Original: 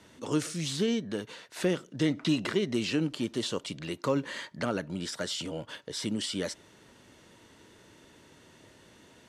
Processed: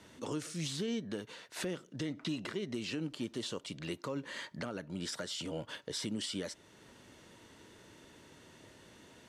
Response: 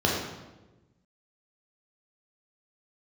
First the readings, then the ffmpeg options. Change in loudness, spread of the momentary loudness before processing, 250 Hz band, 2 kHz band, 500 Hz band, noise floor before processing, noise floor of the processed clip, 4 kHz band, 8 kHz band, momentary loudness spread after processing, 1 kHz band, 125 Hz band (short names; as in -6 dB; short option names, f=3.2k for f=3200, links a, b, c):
-7.5 dB, 9 LU, -8.5 dB, -6.5 dB, -8.5 dB, -58 dBFS, -61 dBFS, -5.5 dB, -5.0 dB, 20 LU, -8.0 dB, -7.5 dB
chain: -af "alimiter=level_in=3dB:limit=-24dB:level=0:latency=1:release=451,volume=-3dB,volume=-1dB"